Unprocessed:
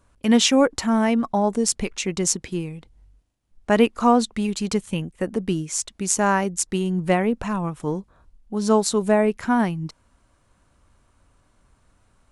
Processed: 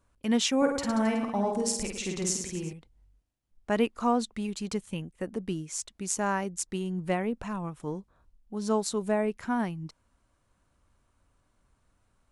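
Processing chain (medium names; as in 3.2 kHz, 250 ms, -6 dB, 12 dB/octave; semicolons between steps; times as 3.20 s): 0.57–2.73 s: reverse bouncing-ball echo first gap 50 ms, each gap 1.2×, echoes 5; trim -9 dB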